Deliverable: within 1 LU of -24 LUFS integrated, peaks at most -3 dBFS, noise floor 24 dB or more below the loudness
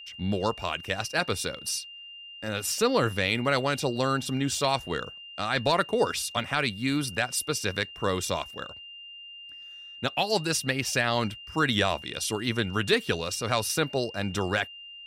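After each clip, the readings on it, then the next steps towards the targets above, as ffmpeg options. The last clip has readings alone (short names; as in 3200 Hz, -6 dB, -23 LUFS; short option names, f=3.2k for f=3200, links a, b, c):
steady tone 2800 Hz; tone level -42 dBFS; loudness -27.5 LUFS; peak -12.0 dBFS; loudness target -24.0 LUFS
-> -af "bandreject=f=2.8k:w=30"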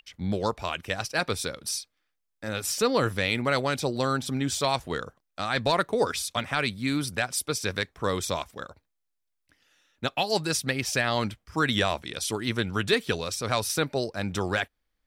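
steady tone none; loudness -28.0 LUFS; peak -12.0 dBFS; loudness target -24.0 LUFS
-> -af "volume=4dB"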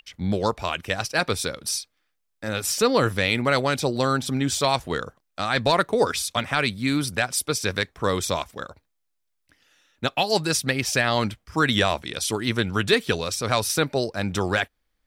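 loudness -24.0 LUFS; peak -8.0 dBFS; noise floor -75 dBFS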